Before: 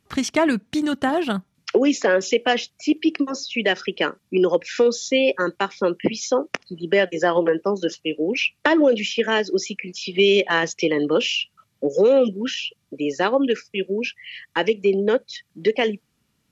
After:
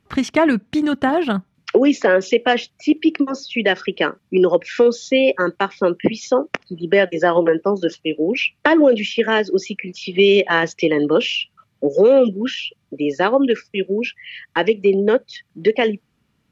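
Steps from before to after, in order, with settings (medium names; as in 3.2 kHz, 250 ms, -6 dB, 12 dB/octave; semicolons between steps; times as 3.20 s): tone controls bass +1 dB, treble -10 dB; trim +3.5 dB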